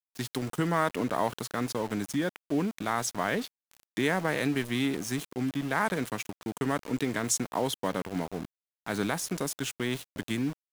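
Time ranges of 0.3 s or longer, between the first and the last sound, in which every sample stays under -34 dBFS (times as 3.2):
3.47–3.97
8.45–8.86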